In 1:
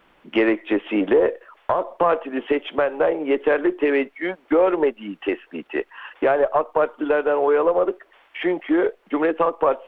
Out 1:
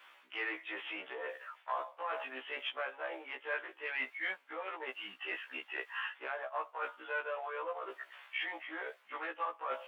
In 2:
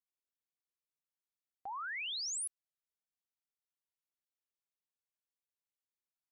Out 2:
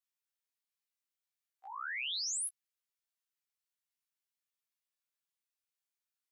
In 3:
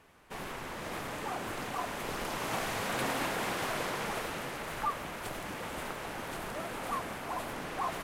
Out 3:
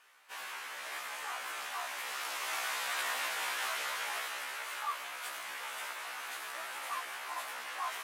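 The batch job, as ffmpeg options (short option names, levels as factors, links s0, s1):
-af "areverse,acompressor=threshold=0.0447:ratio=20,areverse,highpass=1200,afftfilt=real='re*1.73*eq(mod(b,3),0)':imag='im*1.73*eq(mod(b,3),0)':win_size=2048:overlap=0.75,volume=1.68"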